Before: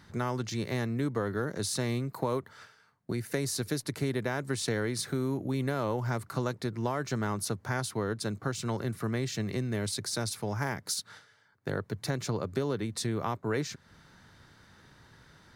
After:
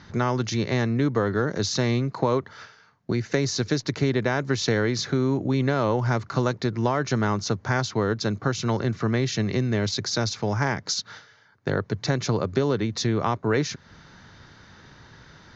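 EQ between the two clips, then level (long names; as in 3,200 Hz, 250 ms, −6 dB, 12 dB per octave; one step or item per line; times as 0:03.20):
Butterworth low-pass 6,800 Hz 96 dB per octave
+8.0 dB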